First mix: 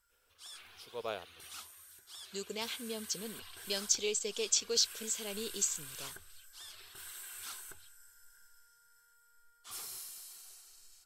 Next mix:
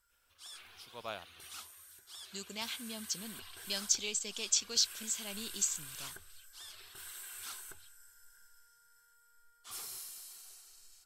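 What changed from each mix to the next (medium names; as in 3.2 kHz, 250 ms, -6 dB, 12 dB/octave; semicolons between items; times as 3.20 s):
speech: add peaking EQ 450 Hz -12.5 dB 0.58 oct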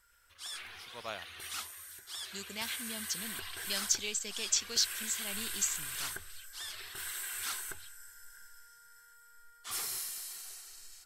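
background +7.0 dB; master: add peaking EQ 1.9 kHz +6.5 dB 0.46 oct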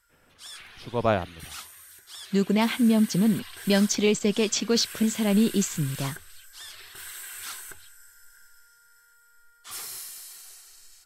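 speech: remove pre-emphasis filter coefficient 0.97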